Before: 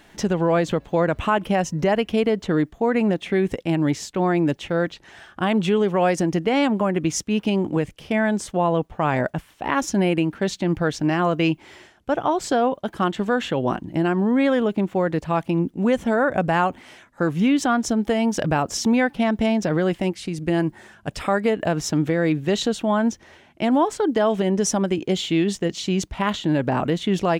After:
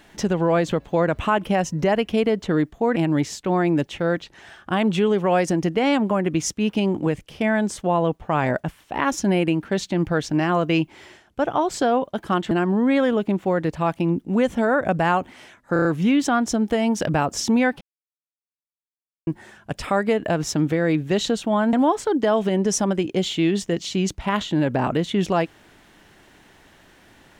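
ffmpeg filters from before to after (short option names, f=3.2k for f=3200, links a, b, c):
-filter_complex "[0:a]asplit=10[a][b][c][d][e][f][g][h][i][j];[a]atrim=end=2.962[k];[b]atrim=start=3.658:end=13.212[l];[c]atrim=start=13.998:end=17.252[m];[d]atrim=start=17.218:end=17.252[n];[e]atrim=start=17.218:end=17.252[o];[f]atrim=start=17.218:end=17.252[p];[g]atrim=start=17.218:end=19.18,asetpts=PTS-STARTPTS,afade=t=out:st=1.958:d=0.004:c=hsin[q];[h]atrim=start=19.18:end=20.64,asetpts=PTS-STARTPTS,volume=0[r];[i]atrim=start=20.64:end=23.102,asetpts=PTS-STARTPTS,afade=t=in:d=0.004:c=hsin[s];[j]atrim=start=23.658[t];[k][l]acrossfade=d=0.004:c1=hsin:c2=hsin[u];[u][m]acrossfade=d=0.004:c1=hsin:c2=hsin[v];[v][n]acrossfade=d=0.004:c1=hsin:c2=hsin[w];[w][o]acrossfade=d=0.004:c1=hsin:c2=hsin[x];[x][p]acrossfade=d=0.004:c1=hsin:c2=hsin[y];[q][r][s]concat=n=3:v=0:a=1[z];[y][z]acrossfade=d=0.004:c1=hsin:c2=hsin[aa];[aa][t]acrossfade=d=0.004:c1=hsin:c2=hsin"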